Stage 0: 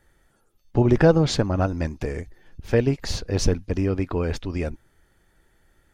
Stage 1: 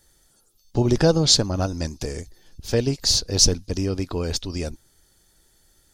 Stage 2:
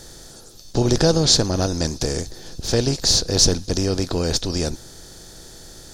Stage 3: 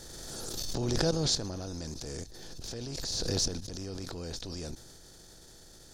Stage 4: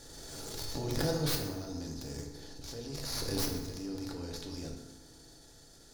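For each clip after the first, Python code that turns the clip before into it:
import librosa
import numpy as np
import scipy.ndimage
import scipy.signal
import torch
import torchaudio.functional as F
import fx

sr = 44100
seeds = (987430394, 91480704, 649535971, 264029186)

y1 = fx.high_shelf_res(x, sr, hz=3200.0, db=13.0, q=1.5)
y1 = y1 * librosa.db_to_amplitude(-1.5)
y2 = fx.bin_compress(y1, sr, power=0.6)
y2 = y2 * librosa.db_to_amplitude(-1.0)
y3 = fx.level_steps(y2, sr, step_db=15)
y3 = fx.transient(y3, sr, attack_db=-10, sustain_db=2)
y3 = fx.pre_swell(y3, sr, db_per_s=21.0)
y3 = y3 * librosa.db_to_amplitude(-8.0)
y4 = fx.tracing_dist(y3, sr, depth_ms=0.17)
y4 = fx.rev_fdn(y4, sr, rt60_s=1.2, lf_ratio=0.95, hf_ratio=0.6, size_ms=21.0, drr_db=0.5)
y4 = y4 * librosa.db_to_amplitude(-5.5)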